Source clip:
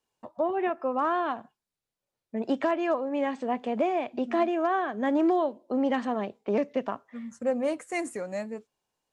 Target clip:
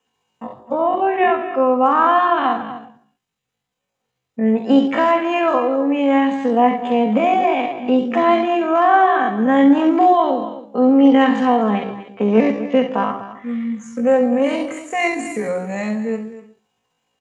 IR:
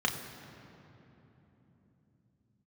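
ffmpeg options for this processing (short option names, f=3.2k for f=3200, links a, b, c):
-filter_complex "[0:a]aecho=1:1:128:0.211[a];[1:a]atrim=start_sample=2205,afade=t=out:st=0.14:d=0.01,atrim=end_sample=6615[b];[a][b]afir=irnorm=-1:irlink=0,atempo=0.53,volume=4.5dB"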